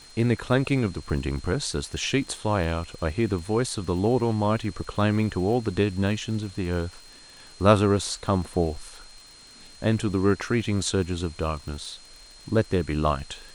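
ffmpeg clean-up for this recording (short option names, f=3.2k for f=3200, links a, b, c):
-af "adeclick=t=4,bandreject=f=4.2k:w=30,afwtdn=0.0032"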